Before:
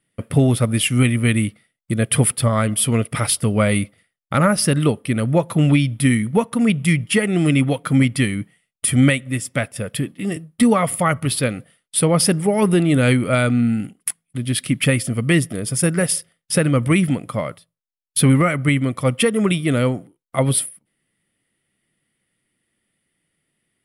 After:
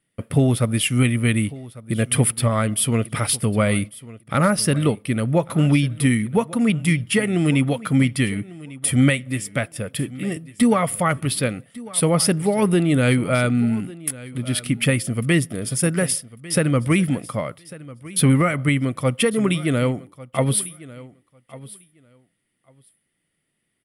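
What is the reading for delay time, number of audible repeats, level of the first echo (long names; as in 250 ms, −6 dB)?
1,148 ms, 2, −19.0 dB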